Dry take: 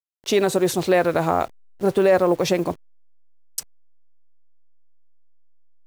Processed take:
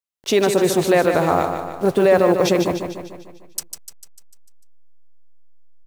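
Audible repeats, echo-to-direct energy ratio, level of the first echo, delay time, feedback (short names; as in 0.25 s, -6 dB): 6, -5.5 dB, -7.0 dB, 0.149 s, 54%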